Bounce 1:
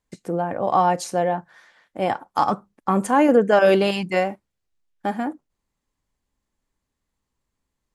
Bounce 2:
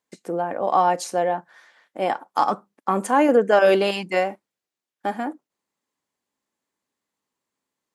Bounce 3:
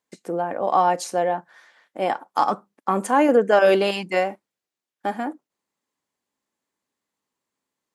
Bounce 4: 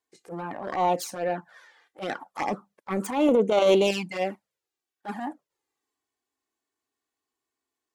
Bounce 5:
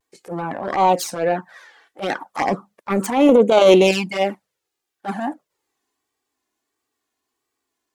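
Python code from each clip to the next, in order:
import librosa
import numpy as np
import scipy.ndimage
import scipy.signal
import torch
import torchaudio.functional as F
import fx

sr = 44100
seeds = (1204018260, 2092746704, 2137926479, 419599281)

y1 = scipy.signal.sosfilt(scipy.signal.butter(2, 260.0, 'highpass', fs=sr, output='sos'), x)
y2 = y1
y3 = fx.self_delay(y2, sr, depth_ms=0.16)
y3 = fx.env_flanger(y3, sr, rest_ms=2.7, full_db=-15.5)
y3 = fx.transient(y3, sr, attack_db=-12, sustain_db=2)
y4 = fx.vibrato(y3, sr, rate_hz=1.5, depth_cents=82.0)
y4 = y4 * 10.0 ** (8.0 / 20.0)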